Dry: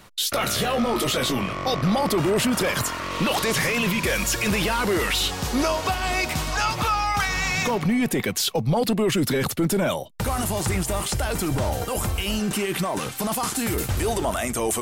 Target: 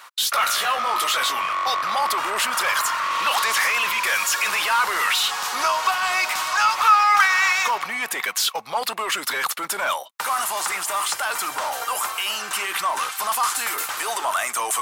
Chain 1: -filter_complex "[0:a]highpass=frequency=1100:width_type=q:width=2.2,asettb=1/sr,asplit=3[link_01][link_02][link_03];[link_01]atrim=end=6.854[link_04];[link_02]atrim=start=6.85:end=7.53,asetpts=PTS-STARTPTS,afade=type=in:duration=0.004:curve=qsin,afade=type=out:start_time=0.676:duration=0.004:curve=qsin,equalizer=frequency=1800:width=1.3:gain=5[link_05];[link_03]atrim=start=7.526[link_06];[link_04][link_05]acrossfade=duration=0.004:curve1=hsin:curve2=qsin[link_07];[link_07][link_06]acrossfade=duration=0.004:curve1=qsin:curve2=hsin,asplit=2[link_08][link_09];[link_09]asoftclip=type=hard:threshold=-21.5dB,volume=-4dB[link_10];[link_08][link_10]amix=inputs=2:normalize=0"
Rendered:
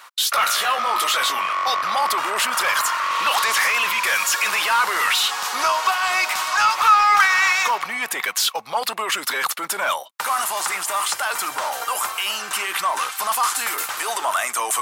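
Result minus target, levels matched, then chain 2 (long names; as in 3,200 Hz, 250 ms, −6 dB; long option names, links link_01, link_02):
hard clipping: distortion −5 dB
-filter_complex "[0:a]highpass=frequency=1100:width_type=q:width=2.2,asettb=1/sr,asplit=3[link_01][link_02][link_03];[link_01]atrim=end=6.854[link_04];[link_02]atrim=start=6.85:end=7.53,asetpts=PTS-STARTPTS,afade=type=in:duration=0.004:curve=qsin,afade=type=out:start_time=0.676:duration=0.004:curve=qsin,equalizer=frequency=1800:width=1.3:gain=5[link_05];[link_03]atrim=start=7.526[link_06];[link_04][link_05]acrossfade=duration=0.004:curve1=hsin:curve2=qsin[link_07];[link_07][link_06]acrossfade=duration=0.004:curve1=qsin:curve2=hsin,asplit=2[link_08][link_09];[link_09]asoftclip=type=hard:threshold=-29dB,volume=-4dB[link_10];[link_08][link_10]amix=inputs=2:normalize=0"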